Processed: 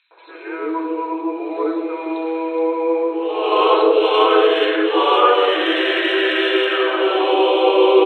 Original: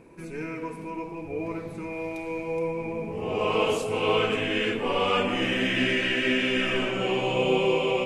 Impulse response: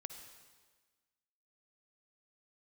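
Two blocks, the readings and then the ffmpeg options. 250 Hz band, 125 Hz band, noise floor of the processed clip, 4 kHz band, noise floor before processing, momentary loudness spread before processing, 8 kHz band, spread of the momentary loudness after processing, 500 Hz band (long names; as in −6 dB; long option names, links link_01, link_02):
+8.0 dB, below −30 dB, −36 dBFS, +8.0 dB, −39 dBFS, 12 LU, below −10 dB, 11 LU, +11.0 dB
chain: -filter_complex "[0:a]asplit=2[link_01][link_02];[1:a]atrim=start_sample=2205[link_03];[link_02][link_03]afir=irnorm=-1:irlink=0,volume=3.5dB[link_04];[link_01][link_04]amix=inputs=2:normalize=0,afftfilt=real='re*between(b*sr/4096,300,4200)':imag='im*between(b*sr/4096,300,4200)':win_size=4096:overlap=0.75,aexciter=amount=3.5:drive=5.8:freq=3300,highshelf=frequency=1800:width_type=q:width=1.5:gain=-6.5,acrossover=split=610|2400[link_05][link_06][link_07];[link_06]adelay=110[link_08];[link_05]adelay=280[link_09];[link_09][link_08][link_07]amix=inputs=3:normalize=0,volume=7.5dB"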